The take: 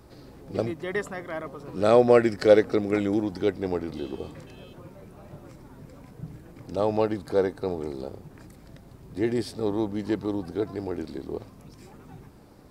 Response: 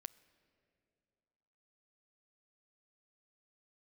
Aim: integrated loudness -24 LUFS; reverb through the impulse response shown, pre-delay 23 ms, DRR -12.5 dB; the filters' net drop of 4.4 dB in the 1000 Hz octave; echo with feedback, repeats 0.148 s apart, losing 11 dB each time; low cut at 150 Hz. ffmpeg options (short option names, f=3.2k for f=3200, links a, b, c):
-filter_complex "[0:a]highpass=150,equalizer=f=1k:t=o:g=-6.5,aecho=1:1:148|296|444:0.282|0.0789|0.0221,asplit=2[a][b];[1:a]atrim=start_sample=2205,adelay=23[c];[b][c]afir=irnorm=-1:irlink=0,volume=18dB[d];[a][d]amix=inputs=2:normalize=0,volume=-10dB"